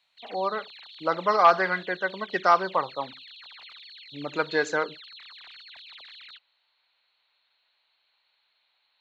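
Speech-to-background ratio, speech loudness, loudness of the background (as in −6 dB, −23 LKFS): 19.0 dB, −25.5 LKFS, −44.5 LKFS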